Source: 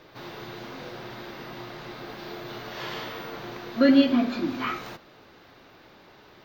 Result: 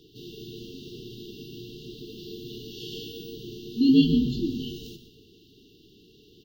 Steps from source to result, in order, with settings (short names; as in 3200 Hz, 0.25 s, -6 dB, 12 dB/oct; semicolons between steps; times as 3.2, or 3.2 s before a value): frequency-shifting echo 0.123 s, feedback 37%, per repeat -110 Hz, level -11 dB; FFT band-reject 470–2700 Hz